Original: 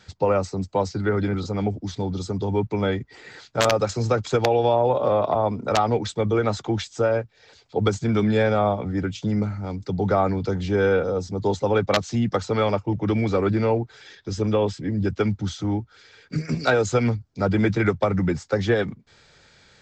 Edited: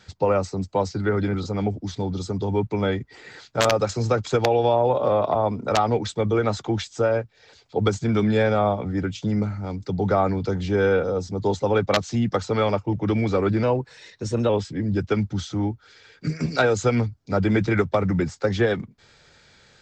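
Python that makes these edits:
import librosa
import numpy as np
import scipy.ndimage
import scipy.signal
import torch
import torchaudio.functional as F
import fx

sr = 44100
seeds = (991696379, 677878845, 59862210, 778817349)

y = fx.edit(x, sr, fx.speed_span(start_s=13.63, length_s=0.95, speed=1.1), tone=tone)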